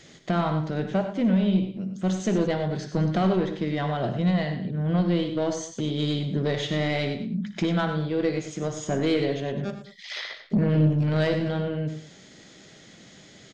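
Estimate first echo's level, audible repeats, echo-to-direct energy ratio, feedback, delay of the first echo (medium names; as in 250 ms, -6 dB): -15.0 dB, 3, -7.0 dB, no regular repeats, 58 ms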